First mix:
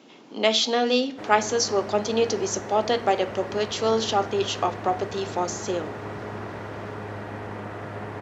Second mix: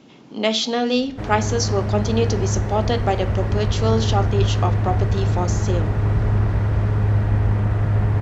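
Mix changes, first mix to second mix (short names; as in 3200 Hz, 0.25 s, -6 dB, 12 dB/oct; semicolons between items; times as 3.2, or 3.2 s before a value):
background +3.5 dB; master: remove HPF 300 Hz 12 dB/oct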